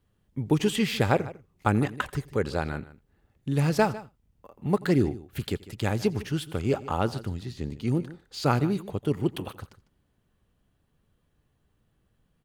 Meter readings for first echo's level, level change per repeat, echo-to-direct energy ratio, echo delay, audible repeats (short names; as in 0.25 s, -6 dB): -23.0 dB, no steady repeat, -16.5 dB, 86 ms, 2